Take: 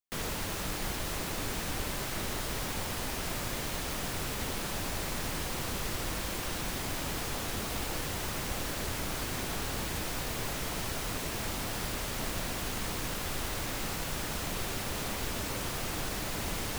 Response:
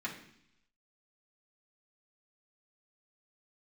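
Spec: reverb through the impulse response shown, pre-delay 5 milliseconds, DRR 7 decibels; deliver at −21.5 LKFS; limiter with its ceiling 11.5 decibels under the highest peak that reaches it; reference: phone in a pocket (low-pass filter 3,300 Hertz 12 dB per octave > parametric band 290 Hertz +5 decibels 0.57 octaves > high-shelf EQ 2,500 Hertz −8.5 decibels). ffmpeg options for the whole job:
-filter_complex "[0:a]alimiter=level_in=8.5dB:limit=-24dB:level=0:latency=1,volume=-8.5dB,asplit=2[link_01][link_02];[1:a]atrim=start_sample=2205,adelay=5[link_03];[link_02][link_03]afir=irnorm=-1:irlink=0,volume=-10dB[link_04];[link_01][link_04]amix=inputs=2:normalize=0,lowpass=3300,equalizer=frequency=290:width_type=o:width=0.57:gain=5,highshelf=frequency=2500:gain=-8.5,volume=22dB"

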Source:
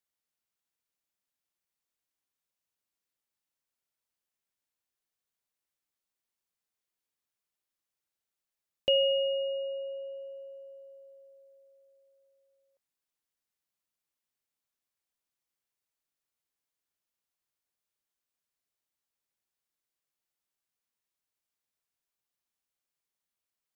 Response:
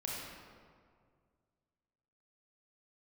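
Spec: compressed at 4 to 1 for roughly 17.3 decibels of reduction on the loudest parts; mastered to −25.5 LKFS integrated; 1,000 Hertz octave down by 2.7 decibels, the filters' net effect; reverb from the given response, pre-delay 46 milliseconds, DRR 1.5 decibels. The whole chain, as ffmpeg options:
-filter_complex "[0:a]equalizer=frequency=1000:width_type=o:gain=-4.5,acompressor=threshold=-44dB:ratio=4,asplit=2[link_01][link_02];[1:a]atrim=start_sample=2205,adelay=46[link_03];[link_02][link_03]afir=irnorm=-1:irlink=0,volume=-3.5dB[link_04];[link_01][link_04]amix=inputs=2:normalize=0,volume=19.5dB"

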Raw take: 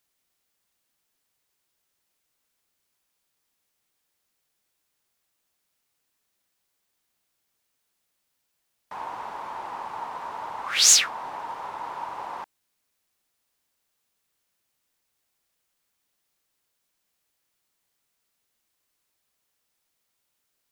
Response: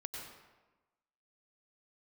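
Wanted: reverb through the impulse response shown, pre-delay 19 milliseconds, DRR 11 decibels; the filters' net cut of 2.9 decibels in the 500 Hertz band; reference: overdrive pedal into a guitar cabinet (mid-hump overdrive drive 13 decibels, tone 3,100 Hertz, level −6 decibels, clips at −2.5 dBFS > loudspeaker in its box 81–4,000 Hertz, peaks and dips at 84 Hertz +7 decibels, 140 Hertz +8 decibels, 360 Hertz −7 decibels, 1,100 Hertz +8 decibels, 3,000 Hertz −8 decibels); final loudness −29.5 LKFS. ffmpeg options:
-filter_complex "[0:a]equalizer=frequency=500:width_type=o:gain=-3.5,asplit=2[link_01][link_02];[1:a]atrim=start_sample=2205,adelay=19[link_03];[link_02][link_03]afir=irnorm=-1:irlink=0,volume=-10dB[link_04];[link_01][link_04]amix=inputs=2:normalize=0,asplit=2[link_05][link_06];[link_06]highpass=frequency=720:poles=1,volume=13dB,asoftclip=type=tanh:threshold=-2.5dB[link_07];[link_05][link_07]amix=inputs=2:normalize=0,lowpass=frequency=3100:poles=1,volume=-6dB,highpass=81,equalizer=frequency=84:width_type=q:width=4:gain=7,equalizer=frequency=140:width_type=q:width=4:gain=8,equalizer=frequency=360:width_type=q:width=4:gain=-7,equalizer=frequency=1100:width_type=q:width=4:gain=8,equalizer=frequency=3000:width_type=q:width=4:gain=-8,lowpass=frequency=4000:width=0.5412,lowpass=frequency=4000:width=1.3066,volume=-4.5dB"

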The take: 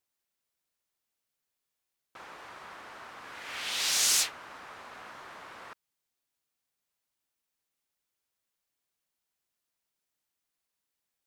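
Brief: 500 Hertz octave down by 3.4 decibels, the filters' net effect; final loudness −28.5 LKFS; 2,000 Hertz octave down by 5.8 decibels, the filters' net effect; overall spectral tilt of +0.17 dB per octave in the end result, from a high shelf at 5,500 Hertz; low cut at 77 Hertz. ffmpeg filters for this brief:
ffmpeg -i in.wav -af "highpass=77,equalizer=frequency=500:width_type=o:gain=-4,equalizer=frequency=2000:width_type=o:gain=-6.5,highshelf=frequency=5500:gain=-5.5,volume=2dB" out.wav

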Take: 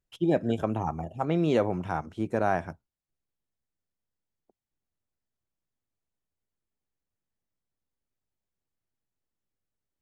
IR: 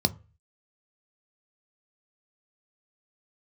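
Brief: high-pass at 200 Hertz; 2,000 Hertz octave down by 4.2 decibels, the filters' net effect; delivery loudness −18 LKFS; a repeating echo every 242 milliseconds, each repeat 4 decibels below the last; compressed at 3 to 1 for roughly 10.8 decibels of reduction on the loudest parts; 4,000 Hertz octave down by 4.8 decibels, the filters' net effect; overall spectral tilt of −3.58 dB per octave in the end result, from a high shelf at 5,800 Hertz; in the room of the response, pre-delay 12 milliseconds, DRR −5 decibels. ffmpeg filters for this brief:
-filter_complex "[0:a]highpass=200,equalizer=frequency=2000:width_type=o:gain=-5.5,equalizer=frequency=4000:width_type=o:gain=-6,highshelf=frequency=5800:gain=6,acompressor=threshold=-35dB:ratio=3,aecho=1:1:242|484|726|968|1210|1452|1694|1936|2178:0.631|0.398|0.25|0.158|0.0994|0.0626|0.0394|0.0249|0.0157,asplit=2[link_01][link_02];[1:a]atrim=start_sample=2205,adelay=12[link_03];[link_02][link_03]afir=irnorm=-1:irlink=0,volume=-4.5dB[link_04];[link_01][link_04]amix=inputs=2:normalize=0,volume=7.5dB"

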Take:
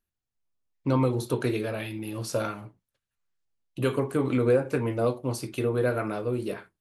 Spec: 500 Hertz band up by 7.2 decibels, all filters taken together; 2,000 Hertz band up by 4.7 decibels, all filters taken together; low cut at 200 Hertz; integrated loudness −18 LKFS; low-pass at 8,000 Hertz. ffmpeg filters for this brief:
ffmpeg -i in.wav -af "highpass=200,lowpass=8000,equalizer=frequency=500:width_type=o:gain=8,equalizer=frequency=2000:width_type=o:gain=6,volume=5dB" out.wav

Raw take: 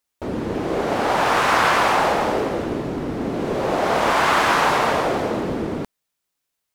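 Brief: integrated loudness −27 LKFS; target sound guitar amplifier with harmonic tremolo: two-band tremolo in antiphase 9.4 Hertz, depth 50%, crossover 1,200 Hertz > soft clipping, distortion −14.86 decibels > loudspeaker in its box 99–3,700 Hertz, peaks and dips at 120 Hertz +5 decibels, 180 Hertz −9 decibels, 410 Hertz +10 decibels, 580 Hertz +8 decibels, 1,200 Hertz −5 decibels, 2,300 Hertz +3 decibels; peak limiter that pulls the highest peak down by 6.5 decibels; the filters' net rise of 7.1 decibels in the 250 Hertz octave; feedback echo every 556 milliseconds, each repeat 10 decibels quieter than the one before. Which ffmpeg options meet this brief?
ffmpeg -i in.wav -filter_complex "[0:a]equalizer=frequency=250:width_type=o:gain=8,alimiter=limit=-9.5dB:level=0:latency=1,aecho=1:1:556|1112|1668|2224:0.316|0.101|0.0324|0.0104,acrossover=split=1200[link_01][link_02];[link_01]aeval=exprs='val(0)*(1-0.5/2+0.5/2*cos(2*PI*9.4*n/s))':channel_layout=same[link_03];[link_02]aeval=exprs='val(0)*(1-0.5/2-0.5/2*cos(2*PI*9.4*n/s))':channel_layout=same[link_04];[link_03][link_04]amix=inputs=2:normalize=0,asoftclip=threshold=-17dB,highpass=99,equalizer=frequency=120:width_type=q:width=4:gain=5,equalizer=frequency=180:width_type=q:width=4:gain=-9,equalizer=frequency=410:width_type=q:width=4:gain=10,equalizer=frequency=580:width_type=q:width=4:gain=8,equalizer=frequency=1200:width_type=q:width=4:gain=-5,equalizer=frequency=2300:width_type=q:width=4:gain=3,lowpass=frequency=3700:width=0.5412,lowpass=frequency=3700:width=1.3066,volume=-6.5dB" out.wav

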